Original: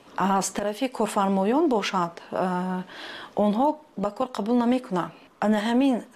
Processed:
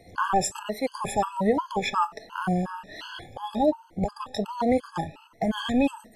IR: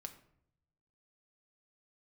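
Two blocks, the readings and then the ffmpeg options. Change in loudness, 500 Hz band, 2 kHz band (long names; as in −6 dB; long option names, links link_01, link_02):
−2.5 dB, −2.0 dB, 0.0 dB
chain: -af "afftfilt=real='re*pow(10,14/40*sin(2*PI*(1.9*log(max(b,1)*sr/1024/100)/log(2)-(1.3)*(pts-256)/sr)))':imag='im*pow(10,14/40*sin(2*PI*(1.9*log(max(b,1)*sr/1024/100)/log(2)-(1.3)*(pts-256)/sr)))':win_size=1024:overlap=0.75,lowshelf=frequency=140:width_type=q:width=1.5:gain=14,afftfilt=real='re*gt(sin(2*PI*2.8*pts/sr)*(1-2*mod(floor(b*sr/1024/850),2)),0)':imag='im*gt(sin(2*PI*2.8*pts/sr)*(1-2*mod(floor(b*sr/1024/850),2)),0)':win_size=1024:overlap=0.75"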